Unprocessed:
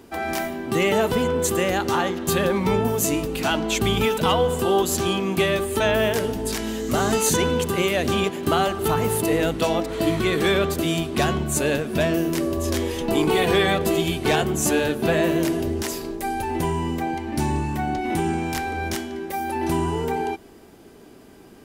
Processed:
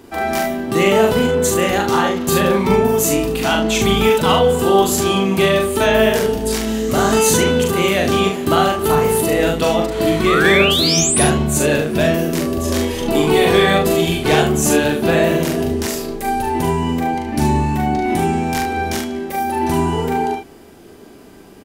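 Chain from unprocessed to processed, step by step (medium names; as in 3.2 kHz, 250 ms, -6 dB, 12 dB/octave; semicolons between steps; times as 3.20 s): painted sound rise, 10.26–11.23 s, 1.1–11 kHz -23 dBFS; loudspeakers at several distances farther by 14 m -3 dB, 25 m -8 dB; trim +3.5 dB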